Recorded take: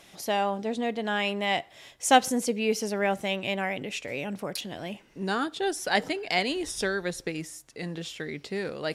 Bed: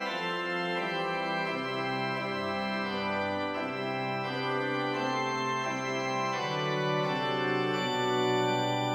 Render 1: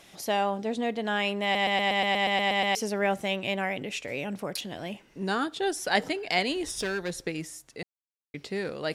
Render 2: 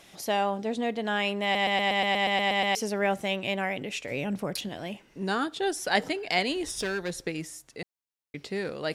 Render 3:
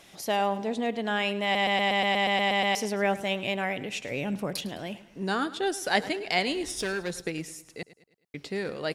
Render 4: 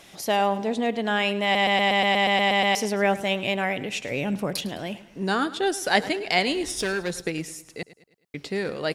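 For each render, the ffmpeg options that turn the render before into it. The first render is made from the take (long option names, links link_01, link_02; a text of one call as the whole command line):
ffmpeg -i in.wav -filter_complex "[0:a]asettb=1/sr,asplit=3[link_01][link_02][link_03];[link_01]atrim=end=6.664[link_04];[link_02]atrim=start=6.66:end=7.26,asetpts=PTS-STARTPTS,afade=type=in:duration=0.004:curve=qsin,afade=type=out:start_time=0.596:duration=0.004:curve=qsin,volume=26dB,asoftclip=hard,volume=-26dB[link_05];[link_03]atrim=start=7.256[link_06];[link_04][link_05]acrossfade=duration=0.004:curve1=hsin:curve2=qsin[link_07];[link_07][link_06]acrossfade=duration=0.004:curve1=qsin:curve2=hsin,asplit=14[link_08][link_09][link_10][link_11][link_12][link_13][link_14][link_15][link_16][link_17][link_18][link_19][link_20][link_21];[link_08]atrim=end=1.552[link_22];[link_09]atrim=start=1.428:end=1.552[link_23];[link_10]atrim=start=1.428:end=1.552[link_24];[link_11]atrim=start=1.428:end=1.552[link_25];[link_12]atrim=start=1.428:end=1.552[link_26];[link_13]atrim=start=1.428:end=1.552[link_27];[link_14]atrim=start=1.428:end=1.552[link_28];[link_15]atrim=start=1.428:end=1.552[link_29];[link_16]atrim=start=1.428:end=1.552[link_30];[link_17]atrim=start=1.428:end=1.552[link_31];[link_18]atrim=start=1.428:end=1.552[link_32];[link_19]atrim=start=2.748:end=7.83,asetpts=PTS-STARTPTS,afade=type=out:start_time=5.078:duration=0.004:curve=hsin[link_33];[link_20]atrim=start=7.83:end=8.34,asetpts=PTS-STARTPTS,volume=0[link_34];[link_21]atrim=start=8.34,asetpts=PTS-STARTPTS,afade=type=in:duration=0.004:curve=hsin[link_35];[link_22][link_23]acrossfade=duration=0.004:curve1=hsin:curve2=hsin[link_36];[link_36][link_24]acrossfade=duration=0.004:curve1=hsin:curve2=hsin[link_37];[link_37][link_25]acrossfade=duration=0.004:curve1=hsin:curve2=hsin[link_38];[link_38][link_26]acrossfade=duration=0.004:curve1=hsin:curve2=hsin[link_39];[link_39][link_27]acrossfade=duration=0.004:curve1=hsin:curve2=hsin[link_40];[link_40][link_28]acrossfade=duration=0.004:curve1=hsin:curve2=hsin[link_41];[link_41][link_29]acrossfade=duration=0.004:curve1=hsin:curve2=hsin[link_42];[link_42][link_30]acrossfade=duration=0.004:curve1=hsin:curve2=hsin[link_43];[link_43][link_31]acrossfade=duration=0.004:curve1=hsin:curve2=hsin[link_44];[link_44][link_32]acrossfade=duration=0.004:curve1=hsin:curve2=hsin[link_45];[link_33][link_34][link_35]concat=n=3:v=0:a=1[link_46];[link_45][link_46]acrossfade=duration=0.004:curve1=hsin:curve2=hsin" out.wav
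ffmpeg -i in.wav -filter_complex "[0:a]asettb=1/sr,asplit=3[link_01][link_02][link_03];[link_01]atrim=end=4.114[link_04];[link_02]atrim=start=4.11:end=4.69,asetpts=PTS-STARTPTS,afade=type=in:duration=0.004:curve=qsin,afade=type=out:start_time=0.576:duration=0.004:curve=qsin,lowshelf=frequency=230:gain=7.5[link_05];[link_03]atrim=start=4.686[link_06];[link_04][link_05]acrossfade=duration=0.004:curve1=hsin:curve2=qsin[link_07];[link_07][link_06]acrossfade=duration=0.004:curve1=qsin:curve2=hsin" out.wav
ffmpeg -i in.wav -af "aecho=1:1:105|210|315|420:0.141|0.0664|0.0312|0.0147" out.wav
ffmpeg -i in.wav -af "volume=4dB" out.wav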